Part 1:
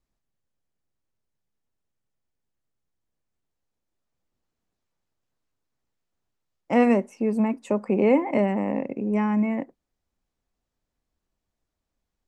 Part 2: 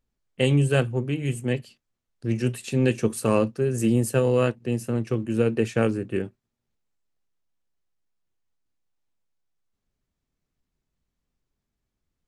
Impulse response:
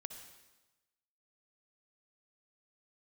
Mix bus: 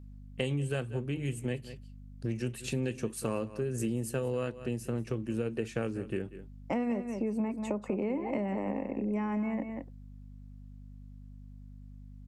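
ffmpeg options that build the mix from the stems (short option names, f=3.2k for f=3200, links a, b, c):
-filter_complex "[0:a]acrossover=split=310[a][b];[b]acompressor=threshold=-24dB:ratio=6[c];[a][c]amix=inputs=2:normalize=0,volume=1.5dB,asplit=2[d][e];[e]volume=-10.5dB[f];[1:a]aeval=exprs='val(0)+0.00501*(sin(2*PI*50*n/s)+sin(2*PI*2*50*n/s)/2+sin(2*PI*3*50*n/s)/3+sin(2*PI*4*50*n/s)/4+sin(2*PI*5*50*n/s)/5)':c=same,volume=-0.5dB,asplit=2[g][h];[h]volume=-19.5dB[i];[f][i]amix=inputs=2:normalize=0,aecho=0:1:188:1[j];[d][g][j]amix=inputs=3:normalize=0,acompressor=threshold=-31dB:ratio=4"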